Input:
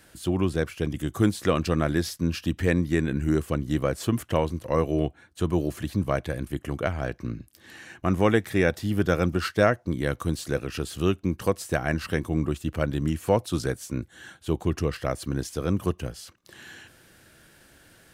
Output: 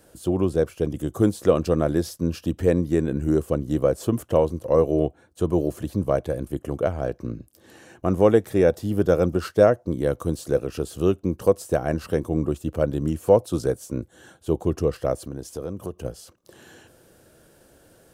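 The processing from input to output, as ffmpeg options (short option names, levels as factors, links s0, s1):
-filter_complex "[0:a]asettb=1/sr,asplit=3[s0][s1][s2];[s0]atrim=end=15.204[s3];[s1]atrim=start=15.2:end=16.05,asetpts=PTS-STARTPTS,afade=t=in:d=0.004:c=qsin,afade=t=out:st=0.846:d=0.004:c=qsin,acompressor=threshold=0.0224:ratio=2.5:attack=3.2:release=140:knee=1:detection=peak[s4];[s2]atrim=start=16.046[s5];[s3][s4]acrossfade=d=0.004:c1=hsin:c2=qsin[s6];[s6][s5]acrossfade=d=0.004:c1=qsin:c2=hsin,equalizer=f=500:t=o:w=1:g=8,equalizer=f=2000:t=o:w=1:g=-9,equalizer=f=4000:t=o:w=1:g=-4"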